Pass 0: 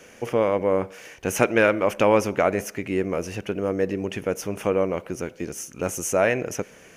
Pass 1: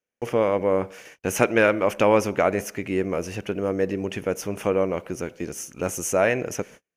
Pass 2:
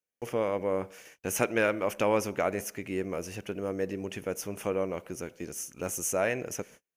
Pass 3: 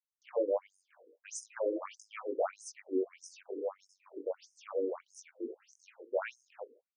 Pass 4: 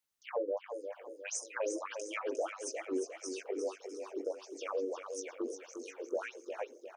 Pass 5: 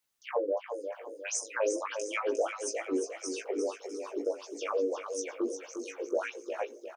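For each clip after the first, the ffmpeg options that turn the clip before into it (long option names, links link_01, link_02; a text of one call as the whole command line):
ffmpeg -i in.wav -af "agate=range=-41dB:threshold=-42dB:ratio=16:detection=peak" out.wav
ffmpeg -i in.wav -af "highshelf=frequency=6400:gain=9,volume=-8dB" out.wav
ffmpeg -i in.wav -filter_complex "[0:a]acrossover=split=170|770|2500[link_01][link_02][link_03][link_04];[link_02]aeval=exprs='0.168*sin(PI/2*1.41*val(0)/0.168)':channel_layout=same[link_05];[link_01][link_05][link_03][link_04]amix=inputs=4:normalize=0,flanger=delay=19.5:depth=2.1:speed=1.5,afftfilt=real='re*between(b*sr/1024,360*pow(7100/360,0.5+0.5*sin(2*PI*1.6*pts/sr))/1.41,360*pow(7100/360,0.5+0.5*sin(2*PI*1.6*pts/sr))*1.41)':imag='im*between(b*sr/1024,360*pow(7100/360,0.5+0.5*sin(2*PI*1.6*pts/sr))/1.41,360*pow(7100/360,0.5+0.5*sin(2*PI*1.6*pts/sr))*1.41)':win_size=1024:overlap=0.75,volume=-2.5dB" out.wav
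ffmpeg -i in.wav -filter_complex "[0:a]acompressor=threshold=-45dB:ratio=3,asplit=2[link_01][link_02];[link_02]aecho=0:1:354|708|1062|1416|1770:0.422|0.194|0.0892|0.041|0.0189[link_03];[link_01][link_03]amix=inputs=2:normalize=0,volume=8.5dB" out.wav
ffmpeg -i in.wav -filter_complex "[0:a]asplit=2[link_01][link_02];[link_02]adelay=17,volume=-7dB[link_03];[link_01][link_03]amix=inputs=2:normalize=0,volume=4.5dB" out.wav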